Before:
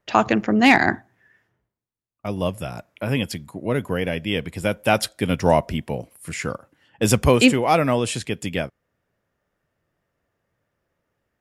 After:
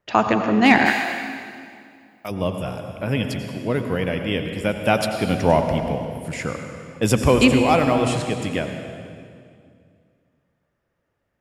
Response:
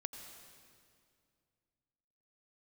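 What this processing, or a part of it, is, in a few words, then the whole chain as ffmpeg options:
swimming-pool hall: -filter_complex "[1:a]atrim=start_sample=2205[a];[0:a][a]afir=irnorm=-1:irlink=0,highshelf=f=5.1k:g=-5.5,asplit=3[b][c][d];[b]afade=t=out:st=0.85:d=0.02[e];[c]aemphasis=mode=production:type=riaa,afade=t=in:st=0.85:d=0.02,afade=t=out:st=2.3:d=0.02[f];[d]afade=t=in:st=2.3:d=0.02[g];[e][f][g]amix=inputs=3:normalize=0,volume=3dB"

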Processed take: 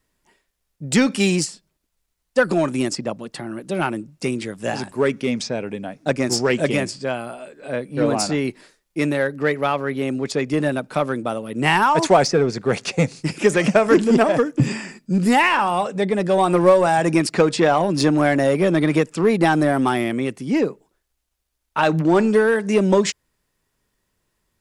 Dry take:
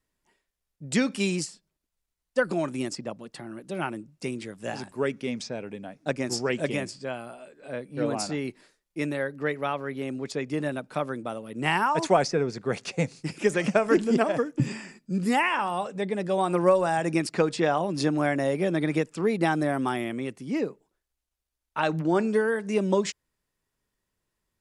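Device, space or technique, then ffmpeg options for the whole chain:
parallel distortion: -filter_complex "[0:a]asplit=2[a][b];[b]asoftclip=type=hard:threshold=-24dB,volume=-4.5dB[c];[a][c]amix=inputs=2:normalize=0,volume=5dB"

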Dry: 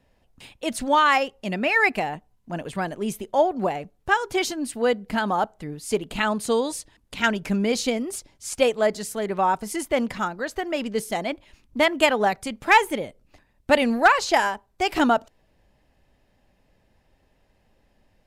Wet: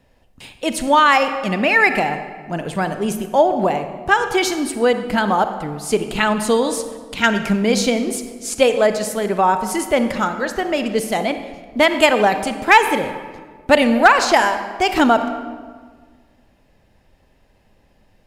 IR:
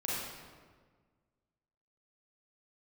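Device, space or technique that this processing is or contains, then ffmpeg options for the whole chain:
ducked reverb: -filter_complex "[0:a]asplit=3[a][b][c];[1:a]atrim=start_sample=2205[d];[b][d]afir=irnorm=-1:irlink=0[e];[c]apad=whole_len=805596[f];[e][f]sidechaincompress=threshold=-21dB:ratio=8:attack=28:release=102,volume=-11dB[g];[a][g]amix=inputs=2:normalize=0,volume=4.5dB"

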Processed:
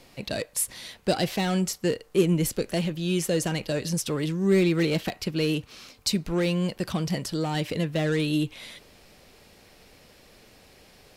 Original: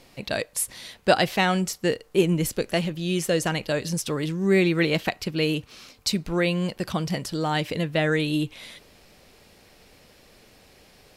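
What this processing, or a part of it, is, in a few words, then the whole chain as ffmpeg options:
one-band saturation: -filter_complex "[0:a]acrossover=split=490|3800[a][b][c];[b]asoftclip=type=tanh:threshold=-30.5dB[d];[a][d][c]amix=inputs=3:normalize=0"

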